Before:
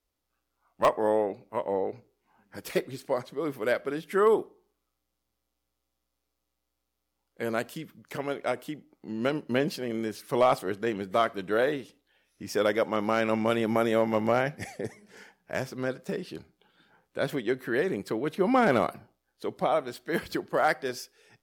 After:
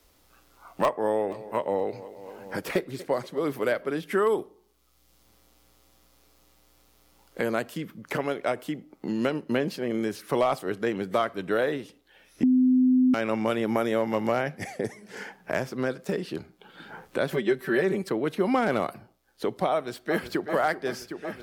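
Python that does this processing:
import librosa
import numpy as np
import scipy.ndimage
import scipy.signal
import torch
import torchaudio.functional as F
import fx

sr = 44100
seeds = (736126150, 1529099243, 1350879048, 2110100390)

y = fx.echo_feedback(x, sr, ms=237, feedback_pct=51, wet_db=-20.5, at=(1.19, 3.87), fade=0.02)
y = fx.comb(y, sr, ms=5.2, depth=0.97, at=(17.3, 18.09))
y = fx.echo_throw(y, sr, start_s=19.72, length_s=0.72, ms=380, feedback_pct=65, wet_db=-10.0)
y = fx.edit(y, sr, fx.bleep(start_s=12.43, length_s=0.71, hz=255.0, db=-14.0), tone=tone)
y = fx.band_squash(y, sr, depth_pct=70)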